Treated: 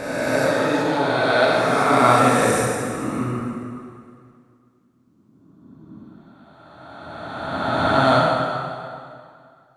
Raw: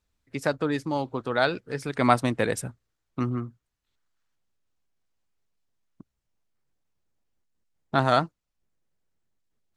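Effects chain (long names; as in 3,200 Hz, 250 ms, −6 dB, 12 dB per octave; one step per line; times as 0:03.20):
peak hold with a rise ahead of every peak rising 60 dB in 2.62 s
0:02.68–0:03.39: band-pass filter 120–3,200 Hz
dense smooth reverb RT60 2.3 s, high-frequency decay 0.8×, DRR −4.5 dB
level −3 dB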